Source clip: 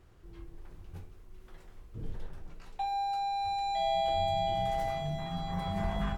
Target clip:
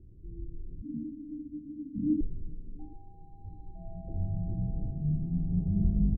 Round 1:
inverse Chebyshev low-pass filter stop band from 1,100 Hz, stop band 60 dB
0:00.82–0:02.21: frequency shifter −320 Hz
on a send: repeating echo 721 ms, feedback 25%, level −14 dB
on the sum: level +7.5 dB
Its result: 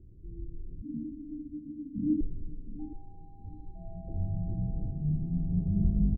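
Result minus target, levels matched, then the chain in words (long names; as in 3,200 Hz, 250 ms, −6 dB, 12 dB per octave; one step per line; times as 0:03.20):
echo-to-direct +8.5 dB
inverse Chebyshev low-pass filter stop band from 1,100 Hz, stop band 60 dB
0:00.82–0:02.21: frequency shifter −320 Hz
on a send: repeating echo 721 ms, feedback 25%, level −22.5 dB
on the sum: level +7.5 dB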